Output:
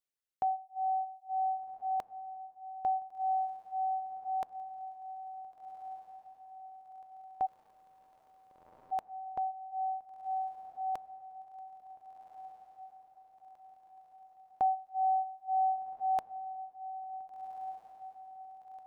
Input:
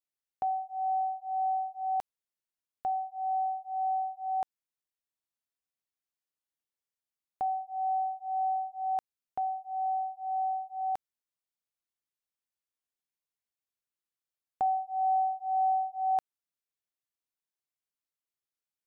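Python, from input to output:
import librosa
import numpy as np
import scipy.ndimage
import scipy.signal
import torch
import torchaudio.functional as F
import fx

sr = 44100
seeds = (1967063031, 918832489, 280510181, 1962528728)

y = fx.dereverb_blind(x, sr, rt60_s=1.6)
y = fx.echo_diffused(y, sr, ms=1495, feedback_pct=53, wet_db=-11.0)
y = fx.spectral_comp(y, sr, ratio=10.0, at=(7.45, 8.91), fade=0.02)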